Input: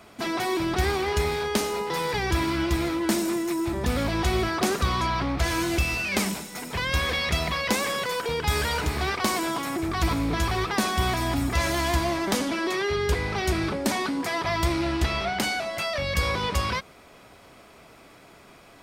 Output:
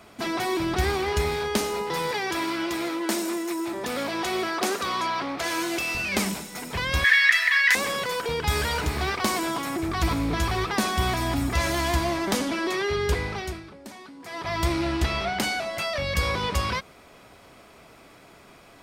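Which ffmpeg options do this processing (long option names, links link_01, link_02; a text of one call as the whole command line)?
ffmpeg -i in.wav -filter_complex "[0:a]asettb=1/sr,asplit=3[link_01][link_02][link_03];[link_01]atrim=end=2.114[link_04];[link_02]atrim=start=2.11:end=5.95,asetpts=PTS-STARTPTS,afade=type=in:duration=0.004:curve=qsin,afade=type=out:start_time=3.836:duration=0.004:curve=qsin,highpass=310[link_05];[link_03]atrim=start=5.946[link_06];[link_04][link_05]acrossfade=duration=0.004:curve1=hsin:curve2=qsin[link_07];[link_07][link_06]acrossfade=duration=0.004:curve1=qsin:curve2=hsin,asettb=1/sr,asplit=3[link_08][link_09][link_10];[link_08]atrim=end=7.044[link_11];[link_09]atrim=start=7.04:end=7.75,asetpts=PTS-STARTPTS,afade=type=in:duration=0.004:curve=qsin,afade=type=out:start_time=0.706:duration=0.004:curve=qsin,highpass=frequency=1800:width_type=q:width=14[link_12];[link_10]atrim=start=7.746[link_13];[link_11][link_12]acrossfade=duration=0.004:curve1=hsin:curve2=qsin[link_14];[link_14][link_13]acrossfade=duration=0.004:curve1=qsin:curve2=hsin,asettb=1/sr,asplit=3[link_15][link_16][link_17];[link_15]atrim=end=8.674[link_18];[link_16]atrim=start=8.67:end=9.32,asetpts=PTS-STARTPTS,afade=type=in:duration=0.004:curve=qsin,afade=type=out:start_time=0.646:duration=0.004:curve=qsin,acrusher=bits=9:mode=log:mix=0:aa=0.000001[link_19];[link_17]atrim=start=9.316[link_20];[link_18][link_19]acrossfade=duration=0.004:curve1=hsin:curve2=qsin[link_21];[link_21][link_20]acrossfade=duration=0.004:curve1=qsin:curve2=hsin,asplit=3[link_22][link_23][link_24];[link_22]atrim=end=13.63,asetpts=PTS-STARTPTS,afade=type=out:start_time=13.17:duration=0.46:silence=0.141254[link_25];[link_23]atrim=start=13.63:end=14.2,asetpts=PTS-STARTPTS,volume=-17dB[link_26];[link_24]atrim=start=14.2,asetpts=PTS-STARTPTS,afade=type=in:duration=0.46:silence=0.141254[link_27];[link_25][link_26][link_27]concat=n=3:v=0:a=1" out.wav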